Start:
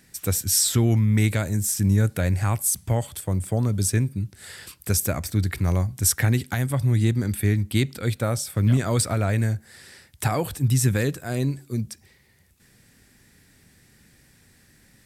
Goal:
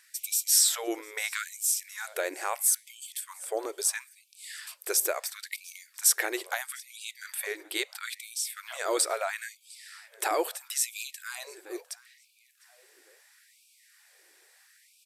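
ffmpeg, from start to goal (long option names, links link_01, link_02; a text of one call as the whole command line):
ffmpeg -i in.wav -filter_complex "[0:a]aresample=32000,aresample=44100,asplit=2[link_01][link_02];[link_02]adelay=704,lowpass=frequency=4500:poles=1,volume=-19.5dB,asplit=2[link_03][link_04];[link_04]adelay=704,lowpass=frequency=4500:poles=1,volume=0.45,asplit=2[link_05][link_06];[link_06]adelay=704,lowpass=frequency=4500:poles=1,volume=0.45[link_07];[link_03][link_05][link_07]amix=inputs=3:normalize=0[link_08];[link_01][link_08]amix=inputs=2:normalize=0,afftfilt=real='re*gte(b*sr/1024,300*pow(2300/300,0.5+0.5*sin(2*PI*0.75*pts/sr)))':imag='im*gte(b*sr/1024,300*pow(2300/300,0.5+0.5*sin(2*PI*0.75*pts/sr)))':win_size=1024:overlap=0.75,volume=-1dB" out.wav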